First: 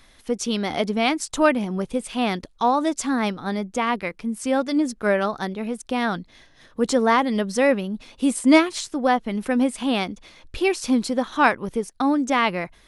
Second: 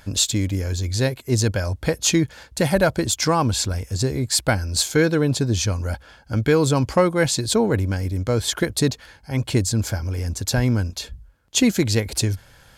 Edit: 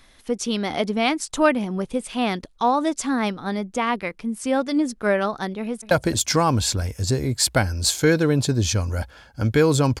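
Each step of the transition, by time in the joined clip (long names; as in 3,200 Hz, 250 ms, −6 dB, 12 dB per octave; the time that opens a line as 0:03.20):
first
0:05.60–0:05.91: delay throw 220 ms, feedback 40%, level −15.5 dB
0:05.91: continue with second from 0:02.83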